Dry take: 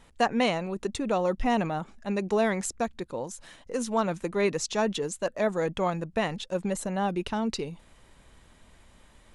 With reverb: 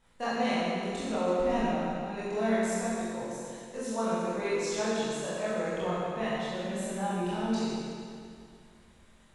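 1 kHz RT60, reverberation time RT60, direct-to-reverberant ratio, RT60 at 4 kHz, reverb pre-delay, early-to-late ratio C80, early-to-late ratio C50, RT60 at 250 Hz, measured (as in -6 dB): 2.3 s, 2.3 s, -11.0 dB, 2.1 s, 22 ms, -2.0 dB, -4.0 dB, 2.3 s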